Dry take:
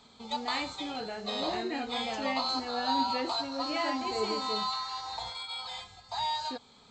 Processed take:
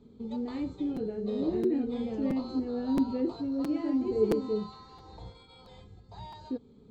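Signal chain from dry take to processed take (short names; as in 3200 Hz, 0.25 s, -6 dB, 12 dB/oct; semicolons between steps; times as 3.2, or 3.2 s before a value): EQ curve 430 Hz 0 dB, 700 Hz -22 dB, 4800 Hz -29 dB; crackling interface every 0.67 s, samples 256, repeat, from 0.96; gain +8.5 dB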